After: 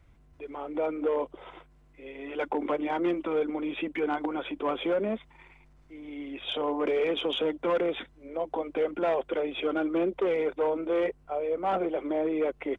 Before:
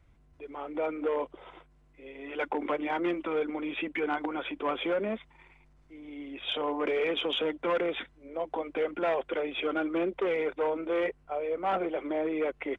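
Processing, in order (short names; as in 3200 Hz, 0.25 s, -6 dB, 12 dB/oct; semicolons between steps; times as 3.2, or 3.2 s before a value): dynamic EQ 2000 Hz, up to -6 dB, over -48 dBFS, Q 0.73; gain +3 dB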